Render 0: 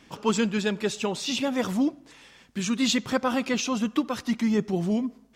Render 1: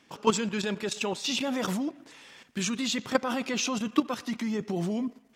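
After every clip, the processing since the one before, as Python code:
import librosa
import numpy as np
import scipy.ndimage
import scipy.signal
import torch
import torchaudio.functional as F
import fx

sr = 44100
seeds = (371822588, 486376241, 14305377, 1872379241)

y = fx.highpass(x, sr, hz=210.0, slope=6)
y = fx.level_steps(y, sr, step_db=11)
y = fx.echo_banded(y, sr, ms=118, feedback_pct=70, hz=1800.0, wet_db=-23.5)
y = y * librosa.db_to_amplitude(4.0)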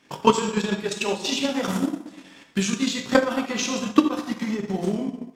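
y = fx.rev_plate(x, sr, seeds[0], rt60_s=1.1, hf_ratio=0.8, predelay_ms=0, drr_db=-1.0)
y = fx.transient(y, sr, attack_db=8, sustain_db=-7)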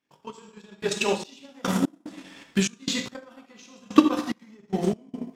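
y = fx.step_gate(x, sr, bpm=73, pattern='....xx..x.xxx.x', floor_db=-24.0, edge_ms=4.5)
y = y * librosa.db_to_amplitude(1.0)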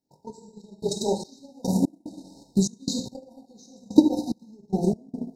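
y = fx.brickwall_bandstop(x, sr, low_hz=960.0, high_hz=3700.0)
y = fx.low_shelf(y, sr, hz=160.0, db=8.5)
y = y * librosa.db_to_amplitude(-1.0)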